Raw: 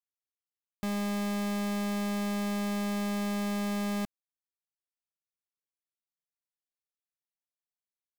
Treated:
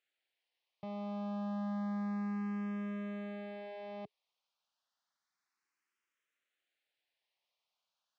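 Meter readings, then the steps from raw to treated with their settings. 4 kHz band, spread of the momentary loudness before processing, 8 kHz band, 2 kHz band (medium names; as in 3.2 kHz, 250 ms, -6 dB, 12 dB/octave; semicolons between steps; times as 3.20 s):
-20.0 dB, 3 LU, under -30 dB, -12.0 dB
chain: zero-crossing glitches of -46.5 dBFS; high-pass 190 Hz; tape spacing loss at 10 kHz 44 dB; band-stop 420 Hz, Q 12; barber-pole phaser +0.3 Hz; trim -1 dB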